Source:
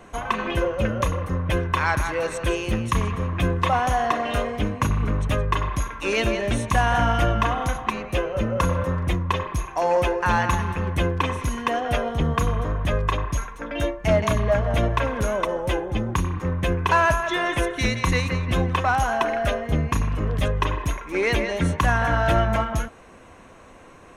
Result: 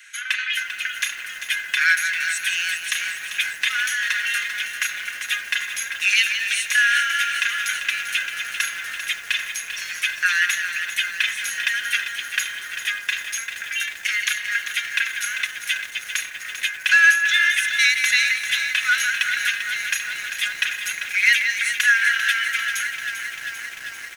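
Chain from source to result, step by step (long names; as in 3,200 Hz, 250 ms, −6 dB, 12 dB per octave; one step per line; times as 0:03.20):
Butterworth high-pass 1,500 Hz 72 dB per octave
comb filter 4.8 ms, depth 46%
feedback echo at a low word length 394 ms, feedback 80%, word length 8 bits, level −9 dB
level +9 dB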